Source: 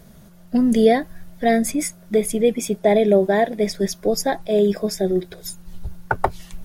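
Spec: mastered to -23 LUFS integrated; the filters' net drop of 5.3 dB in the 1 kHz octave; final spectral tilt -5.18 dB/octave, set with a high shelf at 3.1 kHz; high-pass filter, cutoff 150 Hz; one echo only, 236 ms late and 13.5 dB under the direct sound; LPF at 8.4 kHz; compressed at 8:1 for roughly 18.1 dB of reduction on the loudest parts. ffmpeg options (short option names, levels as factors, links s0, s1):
-af "highpass=150,lowpass=8400,equalizer=f=1000:t=o:g=-8.5,highshelf=f=3100:g=-5.5,acompressor=threshold=0.0316:ratio=8,aecho=1:1:236:0.211,volume=3.98"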